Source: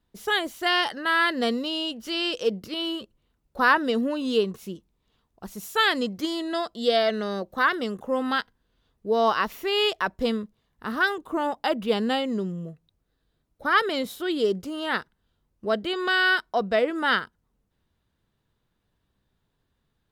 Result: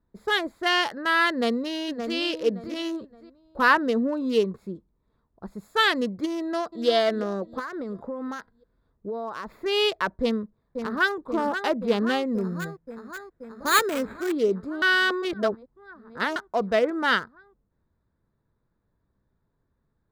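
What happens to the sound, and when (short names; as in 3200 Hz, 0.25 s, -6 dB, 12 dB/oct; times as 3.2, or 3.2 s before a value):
1.31–2.15 echo throw 0.57 s, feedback 30%, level -7 dB
6.37–6.88 echo throw 0.35 s, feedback 50%, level -11.5 dB
7.59–9.66 compressor 12:1, threshold -28 dBFS
10.22–11.17 echo throw 0.53 s, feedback 80%, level -7.5 dB
12.35–14.32 careless resampling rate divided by 8×, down none, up hold
14.82–16.36 reverse
whole clip: Wiener smoothing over 15 samples; notch 760 Hz, Q 12; gain +1 dB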